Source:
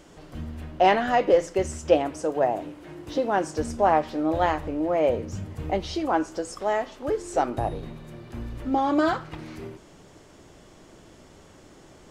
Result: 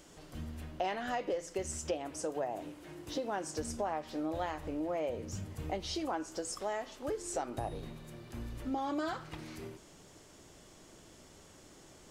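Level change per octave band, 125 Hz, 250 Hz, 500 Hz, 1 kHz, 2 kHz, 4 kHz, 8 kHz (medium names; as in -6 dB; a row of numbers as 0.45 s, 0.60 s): -9.5 dB, -11.5 dB, -13.5 dB, -14.0 dB, -12.5 dB, -7.0 dB, -1.5 dB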